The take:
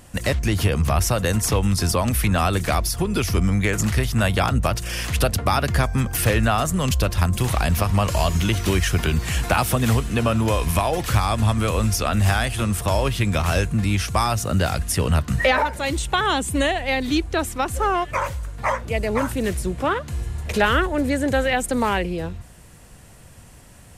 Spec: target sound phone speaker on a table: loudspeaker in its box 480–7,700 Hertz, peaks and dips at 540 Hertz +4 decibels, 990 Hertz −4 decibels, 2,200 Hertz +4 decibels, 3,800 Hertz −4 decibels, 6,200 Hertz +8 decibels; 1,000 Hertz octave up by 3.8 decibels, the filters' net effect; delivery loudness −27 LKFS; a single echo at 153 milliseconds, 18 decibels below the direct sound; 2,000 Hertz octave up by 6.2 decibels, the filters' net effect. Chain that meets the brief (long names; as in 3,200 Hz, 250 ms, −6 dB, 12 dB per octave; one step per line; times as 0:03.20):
loudspeaker in its box 480–7,700 Hz, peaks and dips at 540 Hz +4 dB, 990 Hz −4 dB, 2,200 Hz +4 dB, 3,800 Hz −4 dB, 6,200 Hz +8 dB
parametric band 1,000 Hz +5.5 dB
parametric band 2,000 Hz +4.5 dB
single-tap delay 153 ms −18 dB
level −6.5 dB